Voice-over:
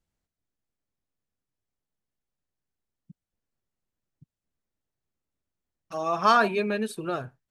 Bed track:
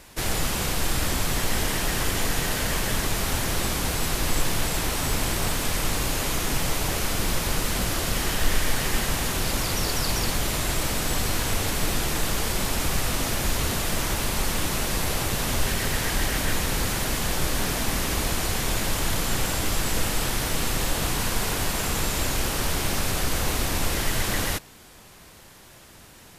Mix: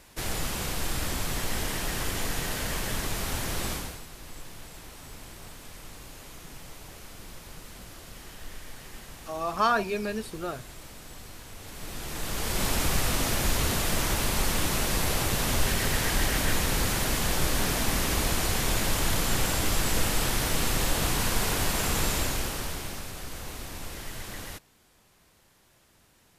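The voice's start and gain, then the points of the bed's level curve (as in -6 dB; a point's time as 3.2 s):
3.35 s, -4.0 dB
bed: 3.73 s -5.5 dB
4.06 s -19.5 dB
11.54 s -19.5 dB
12.65 s -1 dB
22.11 s -1 dB
23.11 s -13.5 dB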